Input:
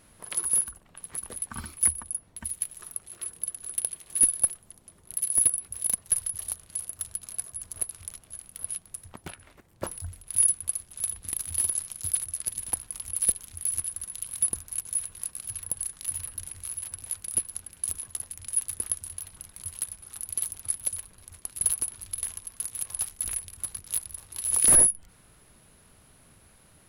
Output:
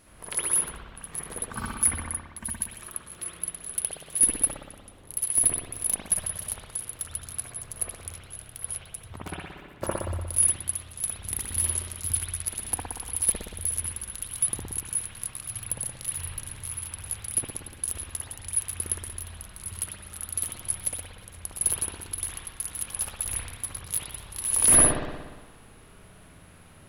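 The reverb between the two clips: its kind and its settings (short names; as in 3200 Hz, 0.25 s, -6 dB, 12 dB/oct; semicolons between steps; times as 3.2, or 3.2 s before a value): spring tank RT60 1.3 s, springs 59 ms, chirp 65 ms, DRR -6.5 dB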